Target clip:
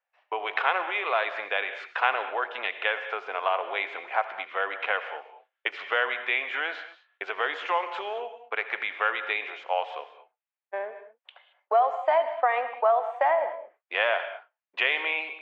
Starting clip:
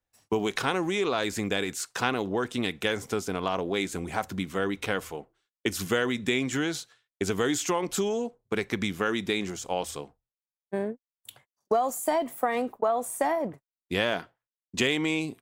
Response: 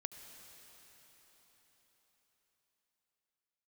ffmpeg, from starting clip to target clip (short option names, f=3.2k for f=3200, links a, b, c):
-filter_complex "[0:a]asuperpass=centerf=1300:order=8:qfactor=0.56[a];[1:a]atrim=start_sample=2205,afade=t=out:st=0.28:d=0.01,atrim=end_sample=12789[b];[a][b]afir=irnorm=-1:irlink=0,volume=8.5dB"